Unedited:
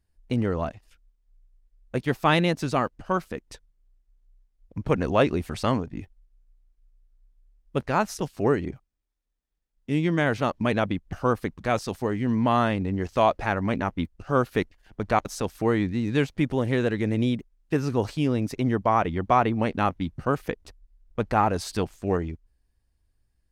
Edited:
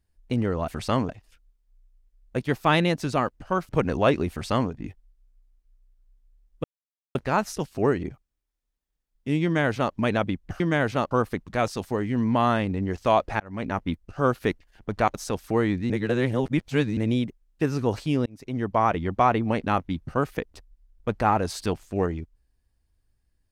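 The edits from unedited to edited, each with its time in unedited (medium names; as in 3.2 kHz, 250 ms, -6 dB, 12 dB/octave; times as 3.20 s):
3.28–4.82 s: delete
5.43–5.84 s: copy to 0.68 s
7.77 s: insert silence 0.51 s
10.06–10.57 s: copy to 11.22 s
13.51–13.88 s: fade in
16.01–17.08 s: reverse
18.37–18.90 s: fade in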